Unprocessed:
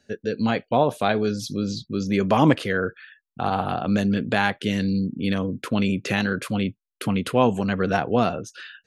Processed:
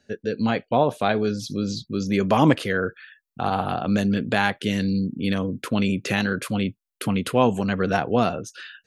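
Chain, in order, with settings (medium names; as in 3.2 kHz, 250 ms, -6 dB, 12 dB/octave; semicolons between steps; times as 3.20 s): treble shelf 8 kHz -5.5 dB, from 1.50 s +5 dB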